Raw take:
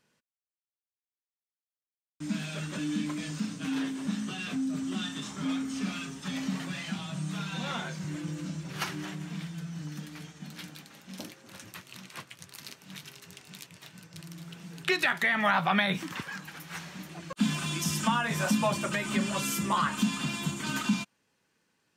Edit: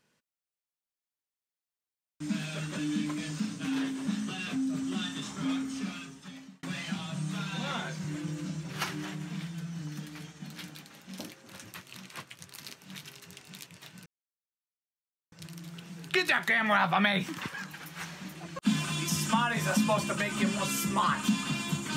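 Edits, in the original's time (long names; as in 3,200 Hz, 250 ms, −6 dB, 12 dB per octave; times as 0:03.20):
0:05.52–0:06.63: fade out
0:14.06: splice in silence 1.26 s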